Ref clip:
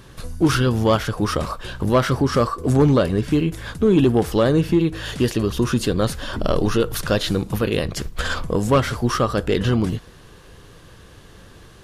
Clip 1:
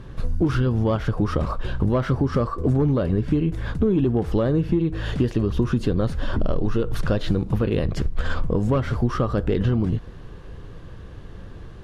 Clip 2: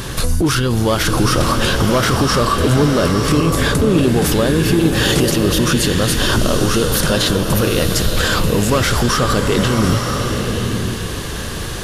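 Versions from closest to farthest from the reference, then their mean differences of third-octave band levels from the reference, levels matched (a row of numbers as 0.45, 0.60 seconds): 1, 2; 6.0, 10.5 decibels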